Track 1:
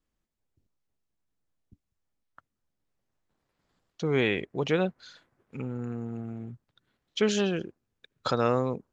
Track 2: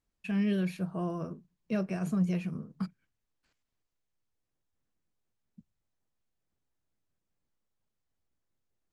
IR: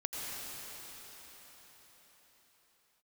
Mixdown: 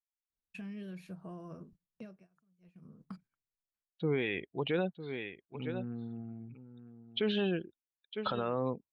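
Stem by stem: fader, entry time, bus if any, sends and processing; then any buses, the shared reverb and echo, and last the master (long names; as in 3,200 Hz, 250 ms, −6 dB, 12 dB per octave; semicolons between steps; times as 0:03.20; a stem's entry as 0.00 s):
+1.0 dB, 0.00 s, no send, echo send −13 dB, spectral dynamics exaggerated over time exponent 1.5; Chebyshev low-pass filter 3,800 Hz, order 5; low-shelf EQ 94 Hz −11 dB
−4.5 dB, 0.30 s, no send, no echo send, downward compressor 4 to 1, threshold −39 dBFS, peak gain reduction 13 dB; automatic ducking −24 dB, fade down 0.40 s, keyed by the first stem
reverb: not used
echo: single-tap delay 954 ms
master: noise gate −59 dBFS, range −11 dB; brickwall limiter −22 dBFS, peak gain reduction 9.5 dB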